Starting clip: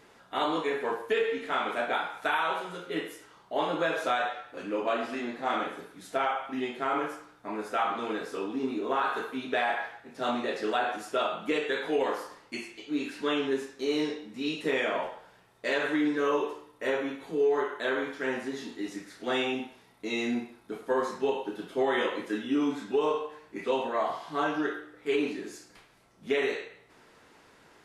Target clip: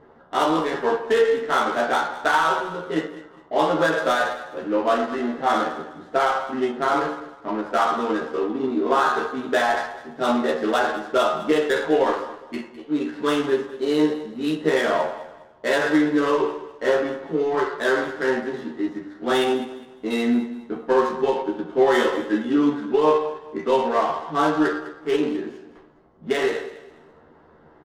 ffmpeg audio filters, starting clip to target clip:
ffmpeg -i in.wav -filter_complex "[0:a]equalizer=frequency=2400:width_type=o:width=0.21:gain=-14,bandreject=frequency=99.2:width_type=h:width=4,bandreject=frequency=198.4:width_type=h:width=4,bandreject=frequency=297.6:width_type=h:width=4,adynamicsmooth=sensitivity=7.5:basefreq=1100,asplit=2[link_01][link_02];[link_02]adelay=13,volume=-4dB[link_03];[link_01][link_03]amix=inputs=2:normalize=0,aecho=1:1:205|410|615:0.168|0.052|0.0161,volume=7.5dB" out.wav

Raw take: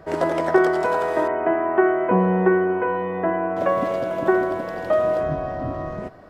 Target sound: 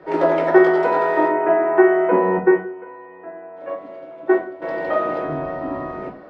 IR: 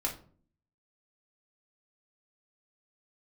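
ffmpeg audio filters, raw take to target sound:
-filter_complex "[0:a]asettb=1/sr,asplit=3[link_01][link_02][link_03];[link_01]atrim=end=2.374[link_04];[link_02]atrim=start=2.37:end=4.62,asetpts=PTS-STARTPTS,afade=type=in:duration=0.004:curve=qsin,afade=type=out:start_time=2.246:duration=0.004:curve=qsin,agate=range=-17dB:threshold=-16dB:ratio=16:detection=peak[link_05];[link_03]atrim=start=4.616[link_06];[link_04][link_05]acrossfade=duration=0.004:curve1=hsin:curve2=qsin[link_07];[link_07][link_06]acrossfade=duration=0.004:curve1=qsin:curve2=hsin,acrossover=split=200 4300:gain=0.158 1 0.112[link_08][link_09][link_10];[link_08][link_09][link_10]amix=inputs=3:normalize=0[link_11];[1:a]atrim=start_sample=2205,afade=type=out:start_time=0.23:duration=0.01,atrim=end_sample=10584[link_12];[link_11][link_12]afir=irnorm=-1:irlink=0"

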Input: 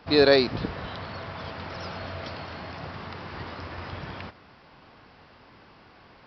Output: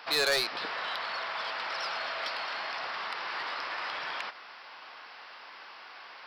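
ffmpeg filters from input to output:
ffmpeg -i in.wav -filter_complex "[0:a]highpass=980,asplit=2[link_01][link_02];[link_02]acompressor=threshold=-43dB:ratio=6,volume=1dB[link_03];[link_01][link_03]amix=inputs=2:normalize=0,asoftclip=type=tanh:threshold=-24dB,volume=2.5dB" out.wav

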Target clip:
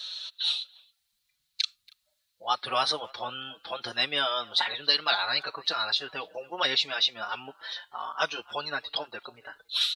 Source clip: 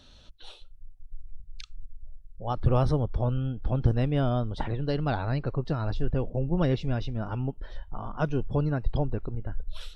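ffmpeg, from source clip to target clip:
ffmpeg -i in.wav -filter_complex "[0:a]highpass=1500,equalizer=frequency=4000:width_type=o:width=0.5:gain=12,asplit=2[link_01][link_02];[link_02]adelay=280,highpass=300,lowpass=3400,asoftclip=type=hard:threshold=-28.5dB,volume=-24dB[link_03];[link_01][link_03]amix=inputs=2:normalize=0,alimiter=level_in=22dB:limit=-1dB:release=50:level=0:latency=1,asplit=2[link_04][link_05];[link_05]adelay=5,afreqshift=1.5[link_06];[link_04][link_06]amix=inputs=2:normalize=1,volume=-6dB" out.wav

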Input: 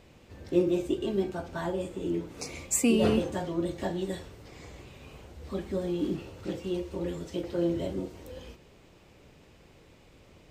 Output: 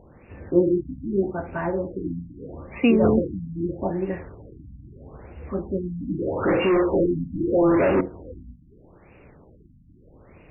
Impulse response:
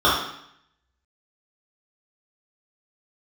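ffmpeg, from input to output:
-filter_complex "[0:a]asettb=1/sr,asplit=3[link_01][link_02][link_03];[link_01]atrim=end=6.194[link_04];[link_02]atrim=start=6.19:end=8.01,asetpts=PTS-STARTPTS,afade=type=in:duration=0.004:curve=qsin,afade=type=out:start_time=1.816:duration=0.004:curve=qsin,asplit=2[link_05][link_06];[link_06]highpass=frequency=720:poles=1,volume=30dB,asoftclip=type=tanh:threshold=-17.5dB[link_07];[link_05][link_07]amix=inputs=2:normalize=0,lowpass=frequency=2300:poles=1,volume=-6dB[link_08];[link_03]atrim=start=8.006[link_09];[link_04][link_08]acrossfade=duration=0.004:curve1=hsin:curve2=qsin[link_10];[link_10][link_09]acrossfade=duration=0.004:curve1=qsin:curve2=hsin,highshelf=frequency=4100:gain=7,afftfilt=real='re*lt(b*sr/1024,270*pow(2900/270,0.5+0.5*sin(2*PI*0.79*pts/sr)))':imag='im*lt(b*sr/1024,270*pow(2900/270,0.5+0.5*sin(2*PI*0.79*pts/sr)))':win_size=1024:overlap=0.75,volume=6dB"

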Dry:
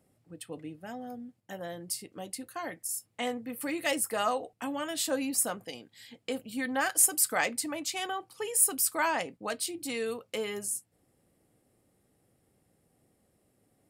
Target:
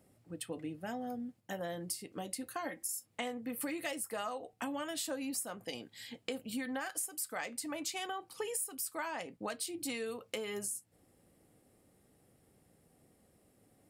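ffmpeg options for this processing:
ffmpeg -i in.wav -filter_complex "[0:a]asettb=1/sr,asplit=3[link_01][link_02][link_03];[link_01]atrim=end=2.654[link_04];[link_02]atrim=start=2.65:end=3.06,asetpts=PTS-STARTPTS,afade=type=in:duration=0.004:curve=qsin,afade=type=out:start_time=0.406:duration=0.004:curve=qsin,aecho=1:1:3.7:0.65,atrim=end_sample=18081[link_05];[link_03]atrim=start=3.056[link_06];[link_04][link_05]acrossfade=duration=0.004:curve1=hsin:curve2=qsin[link_07];[link_07][link_06]acrossfade=duration=0.004:curve1=qsin:curve2=hsin,acompressor=threshold=-38dB:ratio=10,flanger=delay=3.2:depth=1.3:regen=-87:speed=0.2:shape=sinusoidal,volume=7dB" out.wav

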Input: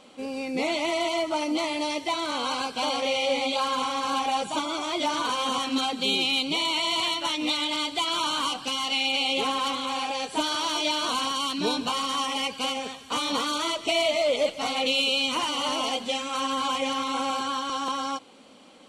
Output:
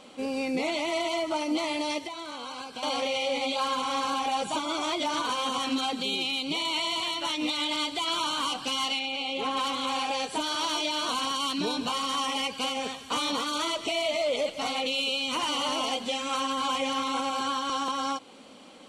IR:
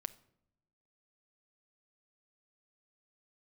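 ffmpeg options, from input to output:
-filter_complex "[0:a]alimiter=limit=-21.5dB:level=0:latency=1:release=174,asettb=1/sr,asplit=3[link_01][link_02][link_03];[link_01]atrim=end=1.984[link_04];[link_02]atrim=start=1.98:end=2.83,asetpts=PTS-STARTPTS,afade=type=in:duration=0.004:curve=qsin,afade=type=out:start_time=0.846:duration=0.004:curve=qsin,acompressor=threshold=-37dB:ratio=10[link_05];[link_03]atrim=start=2.826[link_06];[link_04][link_05]acrossfade=duration=0.004:curve1=hsin:curve2=qsin[link_07];[link_07][link_06]acrossfade=duration=0.004:curve1=qsin:curve2=hsin,asettb=1/sr,asplit=3[link_08][link_09][link_10];[link_08]atrim=end=8.994[link_11];[link_09]atrim=start=8.99:end=9.57,asetpts=PTS-STARTPTS,afade=type=in:duration=0.004:curve=qsin,afade=type=out:start_time=0.576:duration=0.004:curve=qsin,highshelf=frequency=5200:gain=-11[link_12];[link_10]atrim=start=9.566[link_13];[link_11][link_12]acrossfade=duration=0.004:curve1=hsin:curve2=qsin[link_14];[link_14][link_13]acrossfade=duration=0.004:curve1=qsin:curve2=hsin,volume=2dB"

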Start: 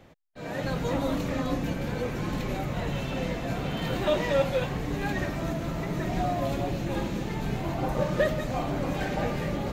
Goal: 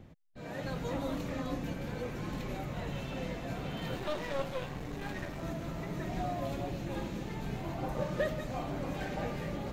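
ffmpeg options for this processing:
ffmpeg -i in.wav -filter_complex "[0:a]acrossover=split=260[link_01][link_02];[link_01]acompressor=mode=upward:threshold=-36dB:ratio=2.5[link_03];[link_03][link_02]amix=inputs=2:normalize=0,asettb=1/sr,asplit=3[link_04][link_05][link_06];[link_04]atrim=end=3.964[link_07];[link_05]atrim=start=3.96:end=5.43,asetpts=PTS-STARTPTS,afade=type=in:duration=0.004:curve=qsin,afade=type=out:start_time=1.466:duration=0.004:curve=qsin,aeval=exprs='clip(val(0),-1,0.0178)':channel_layout=same[link_08];[link_06]atrim=start=5.426[link_09];[link_07][link_08]acrossfade=duration=0.004:curve1=hsin:curve2=qsin[link_10];[link_10][link_09]acrossfade=duration=0.004:curve1=qsin:curve2=hsin,volume=-7.5dB" out.wav

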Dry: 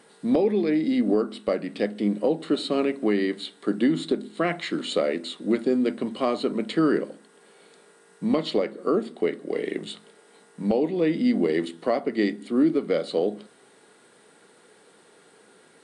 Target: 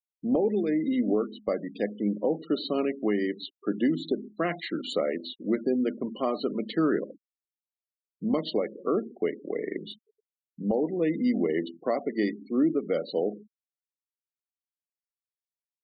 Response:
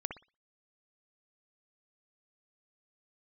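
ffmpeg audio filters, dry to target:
-af "bandreject=frequency=2300:width=23,aeval=exprs='val(0)+0.00158*sin(2*PI*5500*n/s)':channel_layout=same,afftfilt=real='re*gte(hypot(re,im),0.0251)':imag='im*gte(hypot(re,im),0.0251)':win_size=1024:overlap=0.75,volume=-3.5dB"

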